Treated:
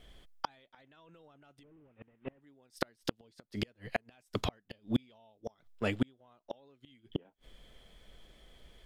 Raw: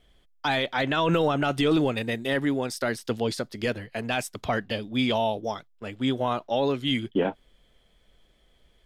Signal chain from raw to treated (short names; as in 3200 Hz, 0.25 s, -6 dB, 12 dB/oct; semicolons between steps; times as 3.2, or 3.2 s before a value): 1.63–2.41 delta modulation 16 kbps, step -39.5 dBFS; flipped gate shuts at -21 dBFS, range -41 dB; gain +4.5 dB